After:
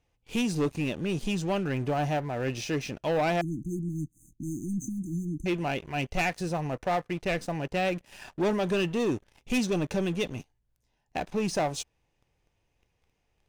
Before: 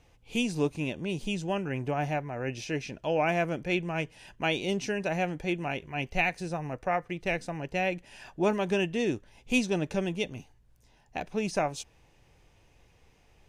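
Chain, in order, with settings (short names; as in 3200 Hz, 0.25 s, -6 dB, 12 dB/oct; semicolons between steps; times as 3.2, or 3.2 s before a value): dynamic EQ 2300 Hz, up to -3 dB, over -45 dBFS, Q 3.4; sample leveller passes 3; 3.41–5.46 brick-wall FIR band-stop 350–6100 Hz; gain -7 dB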